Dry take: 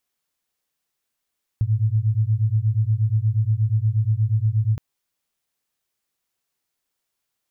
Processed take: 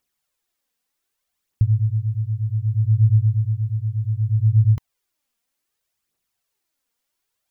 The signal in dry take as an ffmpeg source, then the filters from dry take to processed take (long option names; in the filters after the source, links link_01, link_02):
-f lavfi -i "aevalsrc='0.1*(sin(2*PI*105*t)+sin(2*PI*113.4*t))':duration=3.17:sample_rate=44100"
-af "aphaser=in_gain=1:out_gain=1:delay=4.4:decay=0.5:speed=0.65:type=triangular"